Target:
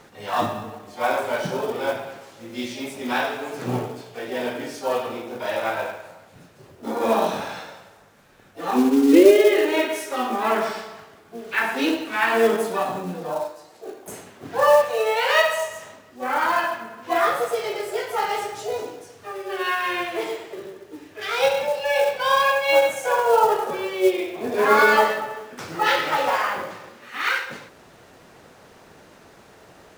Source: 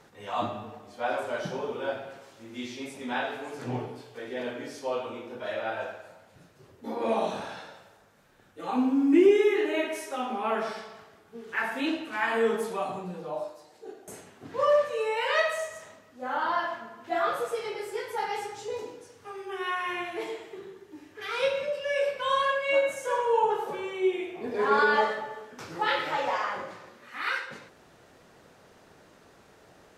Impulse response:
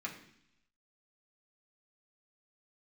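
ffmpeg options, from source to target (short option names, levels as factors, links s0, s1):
-filter_complex "[0:a]acrusher=bits=5:mode=log:mix=0:aa=0.000001,asplit=2[s0][s1];[s1]asetrate=66075,aresample=44100,atempo=0.66742,volume=0.355[s2];[s0][s2]amix=inputs=2:normalize=0,volume=2.11"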